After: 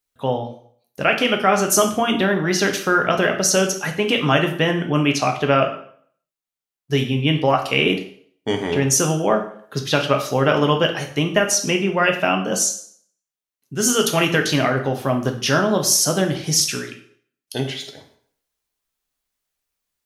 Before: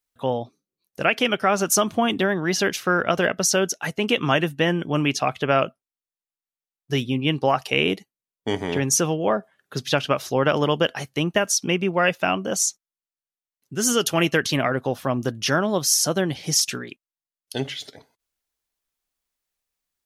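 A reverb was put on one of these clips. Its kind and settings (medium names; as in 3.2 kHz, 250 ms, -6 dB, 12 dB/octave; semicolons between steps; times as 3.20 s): plate-style reverb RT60 0.57 s, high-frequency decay 0.9×, DRR 3.5 dB; trim +1.5 dB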